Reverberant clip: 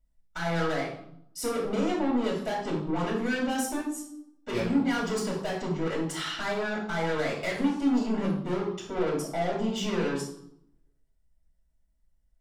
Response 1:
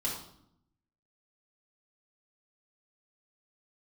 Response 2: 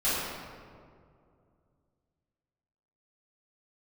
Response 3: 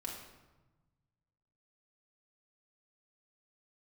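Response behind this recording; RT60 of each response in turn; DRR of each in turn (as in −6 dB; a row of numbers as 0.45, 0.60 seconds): 1; 0.70, 2.3, 1.1 seconds; −5.5, −14.5, −2.5 decibels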